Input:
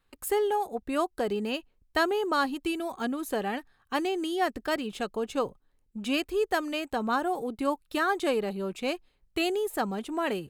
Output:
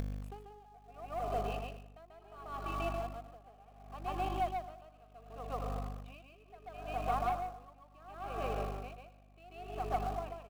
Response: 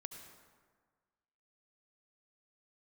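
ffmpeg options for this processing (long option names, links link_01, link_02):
-filter_complex "[0:a]aeval=exprs='sgn(val(0))*max(abs(val(0))-0.00668,0)':channel_layout=same,asplit=3[link_01][link_02][link_03];[link_01]bandpass=frequency=730:width_type=q:width=8,volume=0dB[link_04];[link_02]bandpass=frequency=1090:width_type=q:width=8,volume=-6dB[link_05];[link_03]bandpass=frequency=2440:width_type=q:width=8,volume=-9dB[link_06];[link_04][link_05][link_06]amix=inputs=3:normalize=0,bandreject=frequency=560:width=16,aecho=1:1:452|904|1356|1808:0.0891|0.0499|0.0279|0.0157,asplit=2[link_07][link_08];[1:a]atrim=start_sample=2205,adelay=138[link_09];[link_08][link_09]afir=irnorm=-1:irlink=0,volume=7dB[link_10];[link_07][link_10]amix=inputs=2:normalize=0,asoftclip=type=tanh:threshold=-25.5dB,aeval=exprs='val(0)+0.01*(sin(2*PI*50*n/s)+sin(2*PI*2*50*n/s)/2+sin(2*PI*3*50*n/s)/3+sin(2*PI*4*50*n/s)/4+sin(2*PI*5*50*n/s)/5)':channel_layout=same,asplit=2[link_11][link_12];[link_12]acrusher=bits=4:dc=4:mix=0:aa=0.000001,volume=-9.5dB[link_13];[link_11][link_13]amix=inputs=2:normalize=0,acompressor=mode=upward:threshold=-32dB:ratio=2.5,aeval=exprs='val(0)*pow(10,-24*(0.5-0.5*cos(2*PI*0.7*n/s))/20)':channel_layout=same"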